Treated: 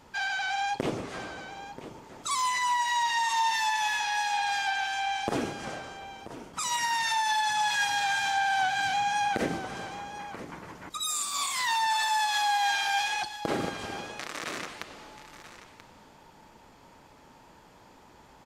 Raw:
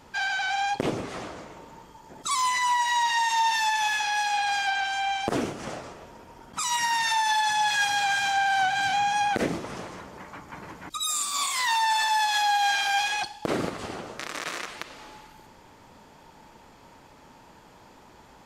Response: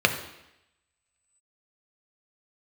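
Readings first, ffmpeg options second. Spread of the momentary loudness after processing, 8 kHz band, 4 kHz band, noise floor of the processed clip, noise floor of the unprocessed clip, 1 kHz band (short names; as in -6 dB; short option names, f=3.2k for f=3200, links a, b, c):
16 LU, -3.0 dB, -3.0 dB, -55 dBFS, -53 dBFS, -3.0 dB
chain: -af "aecho=1:1:984:0.211,volume=-3dB"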